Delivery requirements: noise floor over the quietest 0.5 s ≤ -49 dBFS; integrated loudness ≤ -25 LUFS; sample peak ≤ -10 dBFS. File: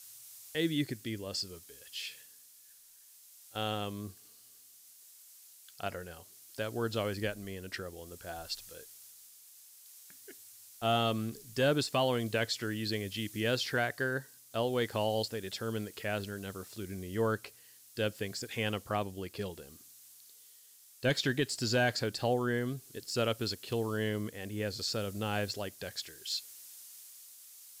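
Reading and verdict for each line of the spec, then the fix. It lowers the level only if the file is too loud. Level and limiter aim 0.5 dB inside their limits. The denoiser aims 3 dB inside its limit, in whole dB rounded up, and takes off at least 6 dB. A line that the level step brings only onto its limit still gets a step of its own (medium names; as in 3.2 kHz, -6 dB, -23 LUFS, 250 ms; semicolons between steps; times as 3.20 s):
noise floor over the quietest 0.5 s -59 dBFS: pass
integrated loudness -34.5 LUFS: pass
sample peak -19.5 dBFS: pass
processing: none needed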